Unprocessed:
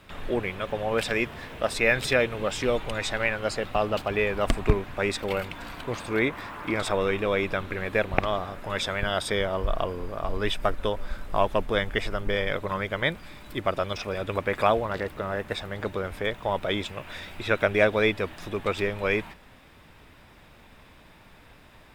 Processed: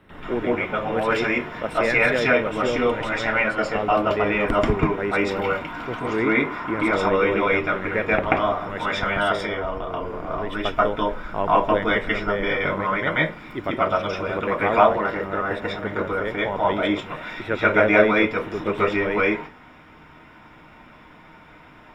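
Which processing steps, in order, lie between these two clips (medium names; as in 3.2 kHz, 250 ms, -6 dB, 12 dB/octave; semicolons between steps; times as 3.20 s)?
9.24–10.52 s: compression, threshold -27 dBFS, peak gain reduction 7.5 dB; reverberation RT60 0.35 s, pre-delay 133 ms, DRR -9 dB; trim -7 dB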